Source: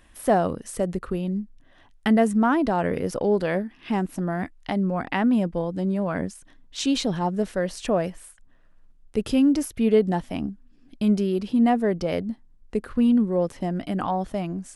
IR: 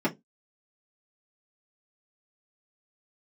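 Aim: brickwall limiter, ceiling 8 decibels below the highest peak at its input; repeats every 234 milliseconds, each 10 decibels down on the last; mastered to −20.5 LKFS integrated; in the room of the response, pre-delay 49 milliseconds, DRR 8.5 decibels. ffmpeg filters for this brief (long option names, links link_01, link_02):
-filter_complex "[0:a]alimiter=limit=-15dB:level=0:latency=1,aecho=1:1:234|468|702|936:0.316|0.101|0.0324|0.0104,asplit=2[link_01][link_02];[1:a]atrim=start_sample=2205,adelay=49[link_03];[link_02][link_03]afir=irnorm=-1:irlink=0,volume=-19dB[link_04];[link_01][link_04]amix=inputs=2:normalize=0,volume=1.5dB"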